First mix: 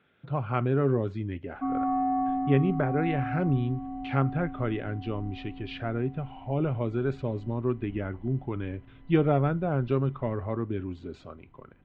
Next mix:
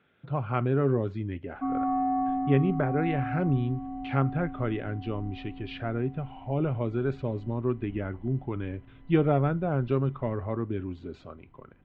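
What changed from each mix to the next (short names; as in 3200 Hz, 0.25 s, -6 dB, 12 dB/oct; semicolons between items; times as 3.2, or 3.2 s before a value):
master: add air absorption 57 m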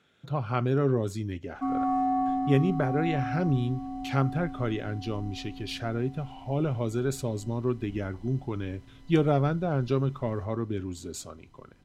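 background: remove air absorption 250 m; master: remove LPF 2800 Hz 24 dB/oct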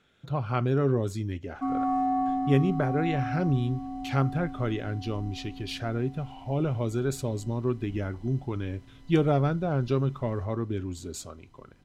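speech: remove HPF 89 Hz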